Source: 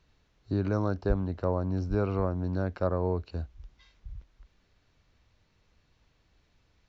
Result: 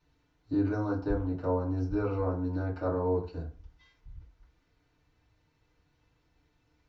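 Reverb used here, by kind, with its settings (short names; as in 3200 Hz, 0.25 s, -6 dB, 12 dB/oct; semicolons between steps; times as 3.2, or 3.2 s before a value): FDN reverb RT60 0.38 s, low-frequency decay 0.95×, high-frequency decay 0.5×, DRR -8 dB; gain -11 dB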